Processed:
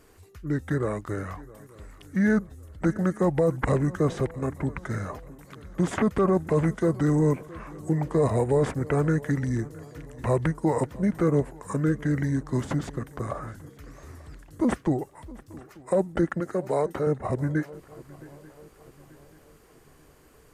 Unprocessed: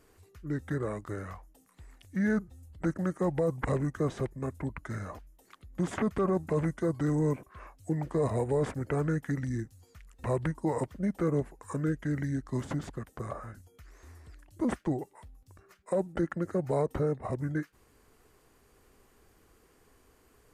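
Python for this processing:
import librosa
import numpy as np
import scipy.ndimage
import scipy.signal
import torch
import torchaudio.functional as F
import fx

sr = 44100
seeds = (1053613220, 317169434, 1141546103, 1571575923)

y = fx.highpass(x, sr, hz=390.0, slope=6, at=(16.4, 17.07))
y = fx.echo_swing(y, sr, ms=887, ratio=3, feedback_pct=44, wet_db=-21.0)
y = y * 10.0 ** (6.0 / 20.0)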